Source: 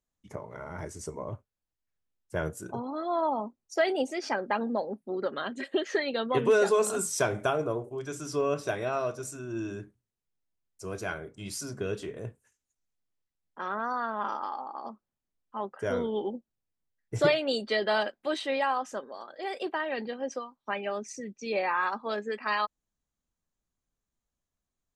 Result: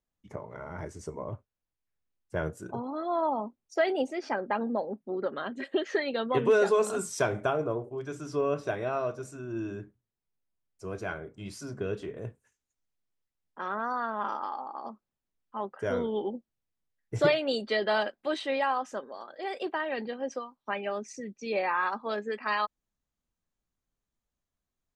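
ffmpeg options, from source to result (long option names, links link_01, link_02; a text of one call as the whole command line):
ffmpeg -i in.wav -af "asetnsamples=nb_out_samples=441:pad=0,asendcmd='4.11 lowpass f 2000;5.62 lowpass f 4000;7.4 lowpass f 2300;12.22 lowpass f 5400',lowpass=frequency=3200:poles=1" out.wav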